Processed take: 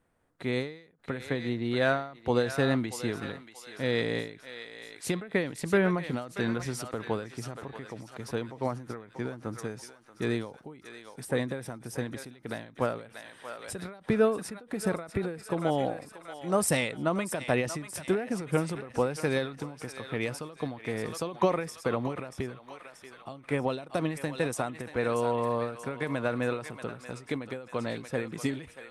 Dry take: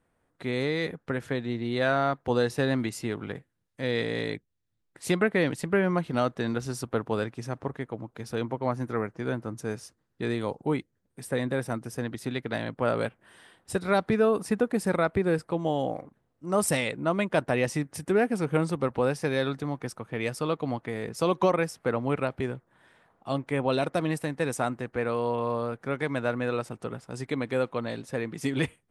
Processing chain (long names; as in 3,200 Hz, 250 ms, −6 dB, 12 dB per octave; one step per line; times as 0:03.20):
feedback echo with a high-pass in the loop 633 ms, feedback 58%, high-pass 1,100 Hz, level −9 dB
every ending faded ahead of time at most 110 dB per second